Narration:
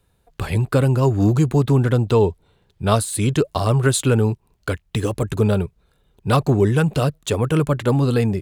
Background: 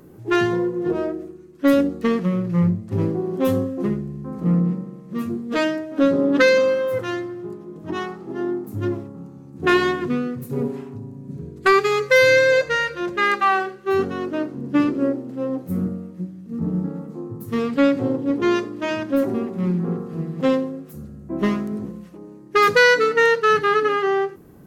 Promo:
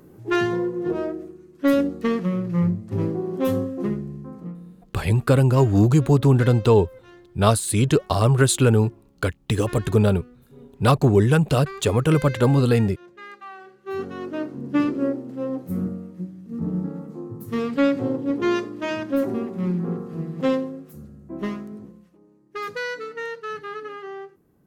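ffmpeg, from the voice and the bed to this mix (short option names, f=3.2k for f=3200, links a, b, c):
-filter_complex "[0:a]adelay=4550,volume=0dB[a];[1:a]volume=17dB,afade=t=out:st=4.14:d=0.41:silence=0.105925,afade=t=in:st=13.58:d=0.97:silence=0.105925,afade=t=out:st=20.49:d=1.68:silence=0.223872[b];[a][b]amix=inputs=2:normalize=0"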